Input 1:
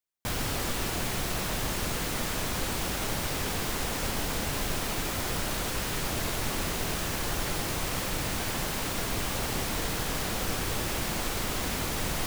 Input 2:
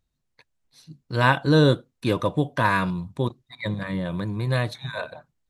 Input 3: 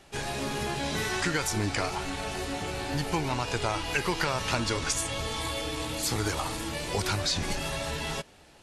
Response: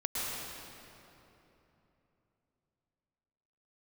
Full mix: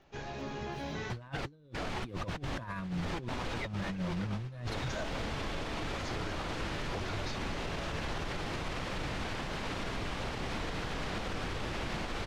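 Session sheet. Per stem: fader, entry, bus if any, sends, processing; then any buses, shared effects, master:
-7.0 dB, 0.85 s, no send, low-pass 3.7 kHz 12 dB/octave
-2.5 dB, 0.00 s, no send, expander on every frequency bin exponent 1.5; tilt EQ -2 dB/octave; bit crusher 12-bit
-10.5 dB, 0.00 s, no send, elliptic low-pass 6.6 kHz; treble shelf 2.6 kHz -10.5 dB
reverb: none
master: compressor with a negative ratio -31 dBFS, ratio -0.5; peak limiter -27.5 dBFS, peak gain reduction 10 dB

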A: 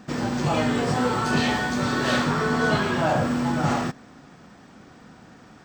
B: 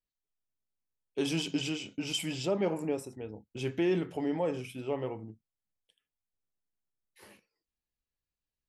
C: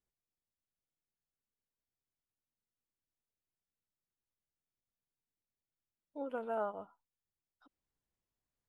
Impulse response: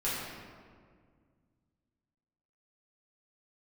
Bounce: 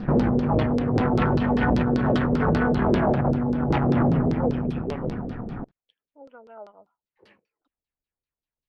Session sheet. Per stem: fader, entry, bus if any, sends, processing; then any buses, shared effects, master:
+1.5 dB, 0.00 s, send -8 dB, echo send -24 dB, tilt EQ -4 dB/octave; peak limiter -10.5 dBFS, peak gain reduction 7 dB
-3.5 dB, 0.00 s, no send, no echo send, none
-11.0 dB, 0.00 s, no send, no echo send, none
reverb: on, RT60 1.9 s, pre-delay 5 ms
echo: delay 74 ms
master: compressor with a negative ratio -17 dBFS, ratio -1; valve stage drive 17 dB, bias 0.7; LFO low-pass saw down 5.1 Hz 360–4800 Hz

